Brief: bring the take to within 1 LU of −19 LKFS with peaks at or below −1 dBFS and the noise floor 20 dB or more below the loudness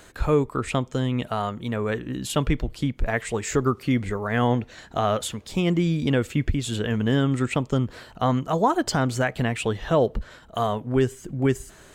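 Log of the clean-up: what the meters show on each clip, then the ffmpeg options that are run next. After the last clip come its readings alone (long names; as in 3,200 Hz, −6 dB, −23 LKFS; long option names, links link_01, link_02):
integrated loudness −25.0 LKFS; sample peak −10.0 dBFS; target loudness −19.0 LKFS
→ -af "volume=6dB"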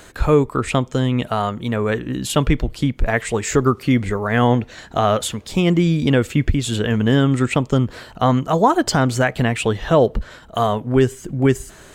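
integrated loudness −19.0 LKFS; sample peak −4.0 dBFS; background noise floor −43 dBFS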